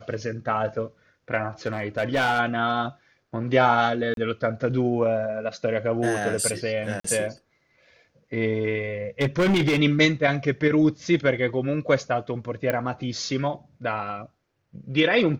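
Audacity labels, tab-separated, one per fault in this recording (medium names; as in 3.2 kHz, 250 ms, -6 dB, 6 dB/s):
1.660000	2.400000	clipped -18 dBFS
4.140000	4.170000	dropout 32 ms
7.000000	7.040000	dropout 44 ms
9.200000	9.800000	clipped -17 dBFS
12.700000	12.700000	pop -11 dBFS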